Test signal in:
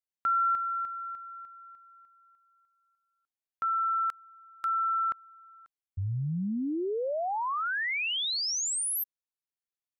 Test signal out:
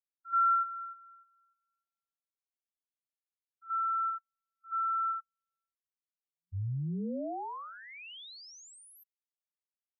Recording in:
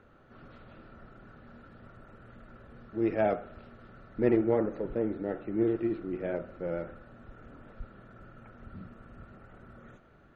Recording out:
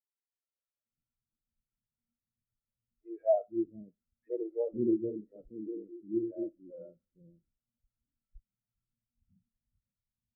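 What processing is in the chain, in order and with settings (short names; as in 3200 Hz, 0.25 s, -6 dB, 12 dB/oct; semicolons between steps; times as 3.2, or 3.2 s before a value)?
three bands offset in time highs, mids, lows 80/550 ms, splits 390/1600 Hz; spectral expander 2.5:1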